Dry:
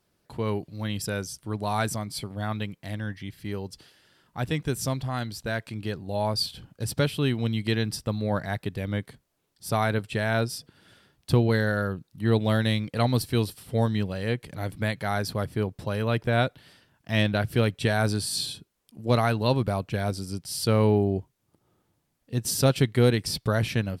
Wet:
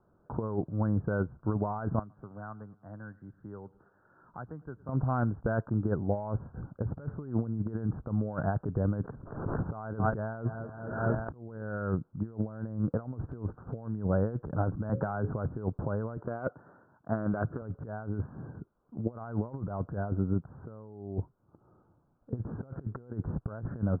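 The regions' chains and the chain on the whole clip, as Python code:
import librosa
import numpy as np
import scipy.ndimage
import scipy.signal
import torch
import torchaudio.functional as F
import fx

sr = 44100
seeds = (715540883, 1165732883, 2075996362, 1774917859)

y = fx.chain(x, sr, fx.pre_emphasis(coefficient=0.9),
    fx.echo_feedback(ms=108, feedback_pct=45, wet_db=-23),
    fx.band_squash(depth_pct=70), at=(1.99, 4.89))
y = fx.chain(y, sr, fx.echo_feedback(ms=228, feedback_pct=58, wet_db=-23.0),
    fx.pre_swell(db_per_s=56.0), at=(9.0, 11.64))
y = fx.chain(y, sr, fx.hum_notches(base_hz=60, count=9),
    fx.band_squash(depth_pct=40), at=(14.89, 15.31))
y = fx.chain(y, sr, fx.highpass(hz=260.0, slope=6),
    fx.doppler_dist(depth_ms=0.27), at=(16.17, 17.62))
y = scipy.signal.sosfilt(scipy.signal.butter(16, 1500.0, 'lowpass', fs=sr, output='sos'), y)
y = fx.over_compress(y, sr, threshold_db=-31.0, ratio=-0.5)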